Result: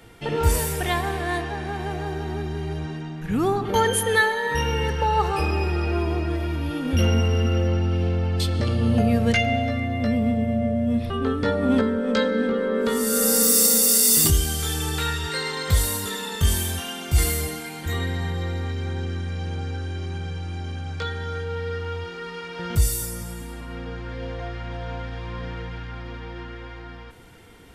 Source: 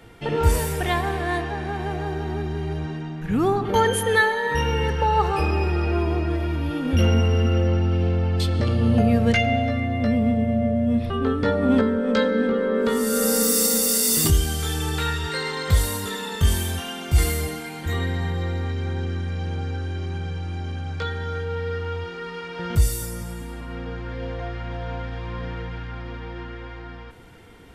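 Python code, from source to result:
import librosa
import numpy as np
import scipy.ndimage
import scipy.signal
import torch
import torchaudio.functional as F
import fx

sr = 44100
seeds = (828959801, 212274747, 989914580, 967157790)

y = fx.high_shelf(x, sr, hz=4000.0, db=6.0)
y = y * librosa.db_to_amplitude(-1.5)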